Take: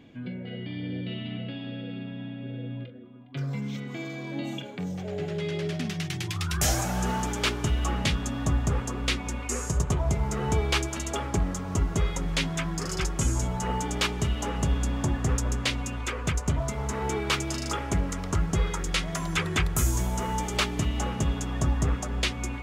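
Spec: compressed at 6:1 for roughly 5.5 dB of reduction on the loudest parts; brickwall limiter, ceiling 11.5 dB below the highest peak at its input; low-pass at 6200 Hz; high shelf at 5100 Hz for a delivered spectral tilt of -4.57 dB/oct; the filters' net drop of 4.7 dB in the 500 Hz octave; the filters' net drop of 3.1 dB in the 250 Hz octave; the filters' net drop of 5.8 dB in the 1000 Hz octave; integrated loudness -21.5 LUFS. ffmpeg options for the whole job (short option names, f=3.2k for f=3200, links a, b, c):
-af "lowpass=6.2k,equalizer=f=250:t=o:g=-3.5,equalizer=f=500:t=o:g=-3.5,equalizer=f=1k:t=o:g=-6.5,highshelf=f=5.1k:g=6,acompressor=threshold=-26dB:ratio=6,volume=15dB,alimiter=limit=-12dB:level=0:latency=1"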